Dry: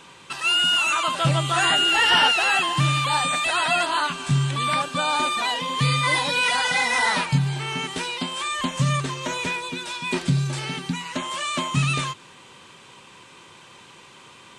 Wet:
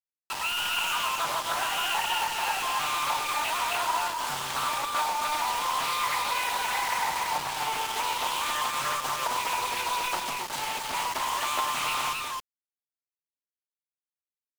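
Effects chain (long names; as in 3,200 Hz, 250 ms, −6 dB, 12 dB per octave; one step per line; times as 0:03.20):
high-pass filter 600 Hz 12 dB per octave
parametric band 910 Hz +14.5 dB 0.38 octaves
downward compressor 20 to 1, threshold −23 dBFS, peak gain reduction 18.5 dB
bit reduction 5 bits
on a send: loudspeakers that aren't time-aligned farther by 35 metres −11 dB, 92 metres −3 dB
on the sum: highs frequency-modulated by the lows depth 0.39 ms
level −4 dB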